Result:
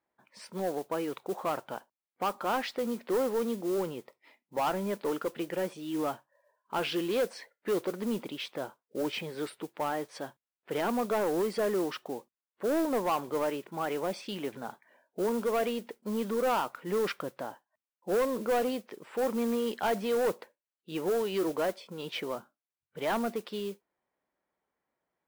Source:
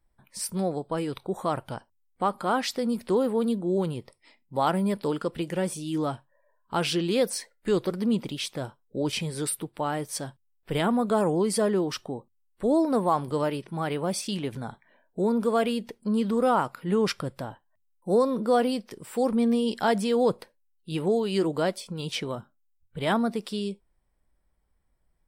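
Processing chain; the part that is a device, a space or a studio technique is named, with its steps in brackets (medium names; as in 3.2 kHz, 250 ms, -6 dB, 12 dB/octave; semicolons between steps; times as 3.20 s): carbon microphone (band-pass 320–2700 Hz; saturation -23 dBFS, distortion -12 dB; modulation noise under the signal 19 dB)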